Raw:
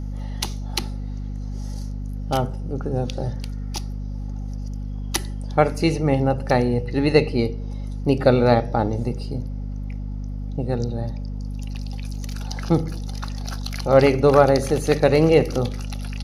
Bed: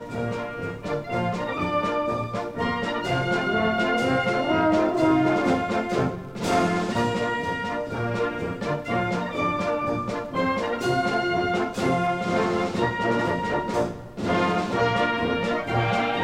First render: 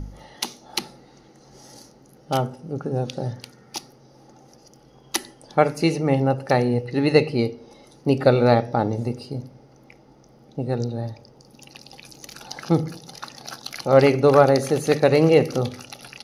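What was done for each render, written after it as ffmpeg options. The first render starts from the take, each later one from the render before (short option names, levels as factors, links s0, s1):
-af "bandreject=f=50:t=h:w=4,bandreject=f=100:t=h:w=4,bandreject=f=150:t=h:w=4,bandreject=f=200:t=h:w=4,bandreject=f=250:t=h:w=4"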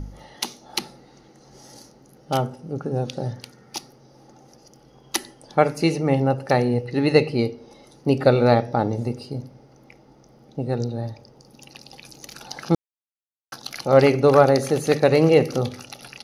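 -filter_complex "[0:a]asplit=3[s0][s1][s2];[s0]atrim=end=12.75,asetpts=PTS-STARTPTS,afade=t=out:st=12.746:d=0.004:c=hsin[s3];[s1]atrim=start=12.75:end=13.52,asetpts=PTS-STARTPTS,volume=0[s4];[s2]atrim=start=13.52,asetpts=PTS-STARTPTS,afade=t=in:d=0.004:c=hsin[s5];[s3][s4][s5]concat=n=3:v=0:a=1"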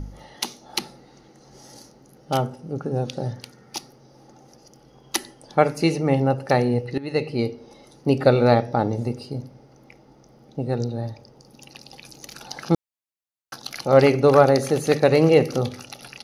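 -filter_complex "[0:a]asplit=2[s0][s1];[s0]atrim=end=6.98,asetpts=PTS-STARTPTS,afade=t=out:st=6.976:d=0.004:c=hsin:silence=0.125893[s2];[s1]atrim=start=6.98,asetpts=PTS-STARTPTS,afade=t=in:d=0.54:silence=0.125893[s3];[s2][s3]concat=n=2:v=0:a=1"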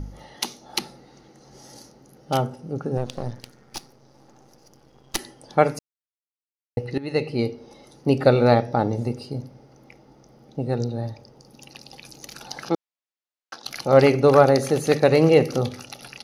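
-filter_complex "[0:a]asettb=1/sr,asplit=3[s0][s1][s2];[s0]atrim=end=2.974[s3];[s1]atrim=start=2.97:end=5.19,asetpts=PTS-STARTPTS,afade=t=in:d=0.004:c=qsin,afade=t=out:st=2.216:d=0.004:c=qsin,aeval=exprs='if(lt(val(0),0),0.251*val(0),val(0))':c=same[s4];[s2]atrim=start=5.186[s5];[s3][s4]acrossfade=d=0.004:c1=hsin:c2=qsin[s6];[s6][s5]acrossfade=d=0.004:c1=qsin:c2=hsin,asettb=1/sr,asplit=3[s7][s8][s9];[s7]atrim=end=12.694[s10];[s8]atrim=start=12.69:end=13.66,asetpts=PTS-STARTPTS,afade=t=in:d=0.004:c=qsin,afade=t=out:st=0.966:d=0.004:c=qsin,highpass=310,lowpass=5600[s11];[s9]atrim=start=13.656[s12];[s10][s11]acrossfade=d=0.004:c1=hsin:c2=qsin[s13];[s13][s12]acrossfade=d=0.004:c1=qsin:c2=hsin,asplit=3[s14][s15][s16];[s14]atrim=end=5.79,asetpts=PTS-STARTPTS,afade=t=out:st=5.786:d=0.004:c=hsin[s17];[s15]atrim=start=5.79:end=6.77,asetpts=PTS-STARTPTS,volume=0[s18];[s16]atrim=start=6.77,asetpts=PTS-STARTPTS,afade=t=in:d=0.004:c=hsin[s19];[s17][s18][s19]concat=n=3:v=0:a=1"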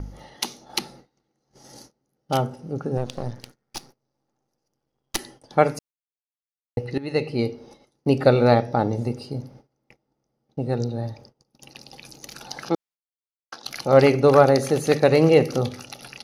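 -af "agate=range=0.0631:threshold=0.00501:ratio=16:detection=peak"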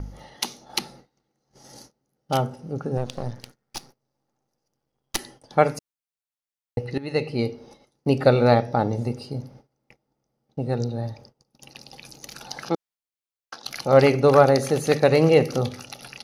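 -af "equalizer=f=330:t=o:w=0.67:g=-2.5"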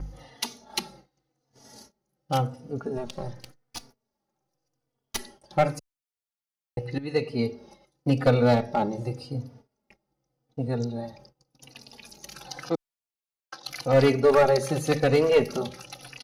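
-filter_complex "[0:a]aeval=exprs='clip(val(0),-1,0.266)':c=same,asplit=2[s0][s1];[s1]adelay=3.4,afreqshift=-0.88[s2];[s0][s2]amix=inputs=2:normalize=1"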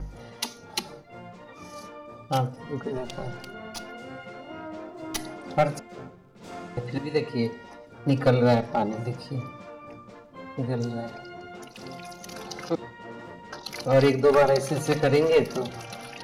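-filter_complex "[1:a]volume=0.126[s0];[0:a][s0]amix=inputs=2:normalize=0"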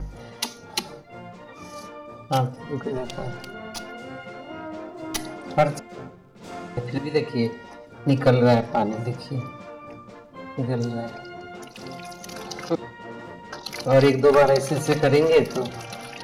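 -af "volume=1.41"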